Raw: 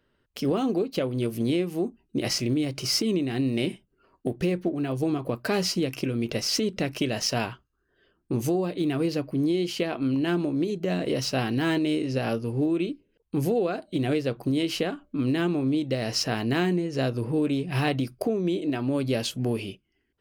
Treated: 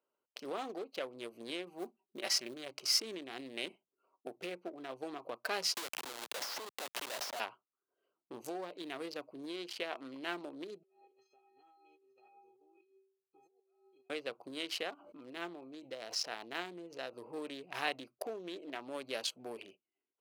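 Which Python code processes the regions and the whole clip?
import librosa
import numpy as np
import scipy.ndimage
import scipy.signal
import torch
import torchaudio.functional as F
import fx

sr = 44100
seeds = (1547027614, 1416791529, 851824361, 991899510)

y = fx.chain(x, sr, fx.comb(ms=5.2, depth=0.53),
    fx.mod_noise(seeds[0], snr_db=32), at=(1.66, 2.71))
y = fx.chain(y, sr, fx.highpass(hz=430.0, slope=12),
    fx.schmitt(flips_db=-33.0),
    fx.band_squash(depth_pct=100), at=(5.74, 7.4))
y = fx.chain(y, sr, fx.stiff_resonator(f0_hz=380.0, decay_s=0.6, stiffness=0.03),
    fx.over_compress(threshold_db=-53.0, ratio=-1.0), at=(10.83, 14.1))
y = fx.chain(y, sr, fx.notch(hz=1100.0, q=29.0),
    fx.comb_fb(f0_hz=170.0, decay_s=0.17, harmonics='all', damping=0.0, mix_pct=50),
    fx.pre_swell(db_per_s=62.0), at=(14.94, 17.13))
y = fx.wiener(y, sr, points=25)
y = scipy.signal.sosfilt(scipy.signal.butter(2, 780.0, 'highpass', fs=sr, output='sos'), y)
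y = y * librosa.db_to_amplitude(-4.0)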